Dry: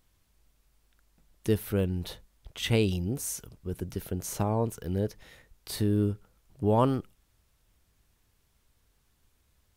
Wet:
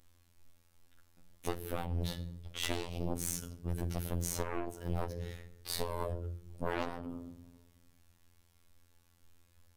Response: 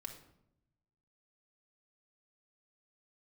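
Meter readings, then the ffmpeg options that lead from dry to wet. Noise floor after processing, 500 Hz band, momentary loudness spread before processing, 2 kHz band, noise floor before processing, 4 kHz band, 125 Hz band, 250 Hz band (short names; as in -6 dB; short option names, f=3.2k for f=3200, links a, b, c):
-68 dBFS, -9.5 dB, 13 LU, -3.0 dB, -70 dBFS, -4.0 dB, -8.5 dB, -11.0 dB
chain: -filter_complex "[0:a]asplit=2[a][b];[1:a]atrim=start_sample=2205[c];[b][c]afir=irnorm=-1:irlink=0,volume=6dB[d];[a][d]amix=inputs=2:normalize=0,aeval=exprs='0.596*(cos(1*acos(clip(val(0)/0.596,-1,1)))-cos(1*PI/2))+0.0188*(cos(5*acos(clip(val(0)/0.596,-1,1)))-cos(5*PI/2))+0.188*(cos(7*acos(clip(val(0)/0.596,-1,1)))-cos(7*PI/2))+0.0376*(cos(8*acos(clip(val(0)/0.596,-1,1)))-cos(8*PI/2))':c=same,acompressor=threshold=-25dB:ratio=12,afftfilt=real='hypot(re,im)*cos(PI*b)':imag='0':win_size=2048:overlap=0.75,volume=-3dB"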